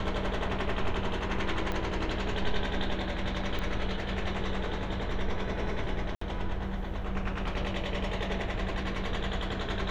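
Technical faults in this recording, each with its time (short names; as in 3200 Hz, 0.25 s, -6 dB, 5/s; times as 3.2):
1.72 pop -19 dBFS
3.59 pop -21 dBFS
6.15–6.21 gap 64 ms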